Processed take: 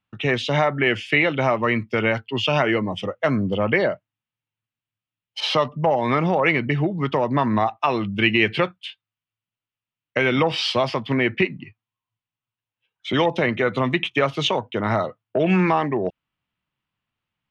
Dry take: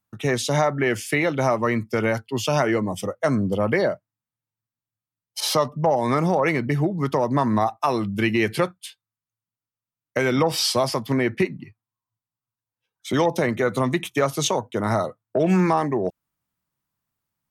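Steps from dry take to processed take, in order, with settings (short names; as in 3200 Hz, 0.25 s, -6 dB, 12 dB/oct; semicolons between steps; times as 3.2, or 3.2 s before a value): synth low-pass 2900 Hz, resonance Q 3.2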